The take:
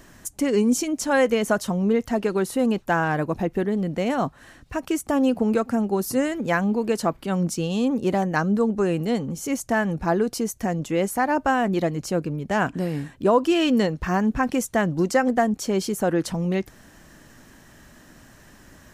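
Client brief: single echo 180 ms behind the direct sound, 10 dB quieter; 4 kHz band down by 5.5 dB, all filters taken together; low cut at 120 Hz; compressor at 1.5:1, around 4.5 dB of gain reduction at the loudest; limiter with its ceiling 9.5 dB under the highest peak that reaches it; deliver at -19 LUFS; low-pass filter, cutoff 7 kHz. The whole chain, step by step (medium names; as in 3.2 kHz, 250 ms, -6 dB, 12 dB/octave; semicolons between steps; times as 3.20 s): high-pass 120 Hz; low-pass 7 kHz; peaking EQ 4 kHz -8 dB; compression 1.5:1, threshold -27 dBFS; peak limiter -20.5 dBFS; delay 180 ms -10 dB; trim +10 dB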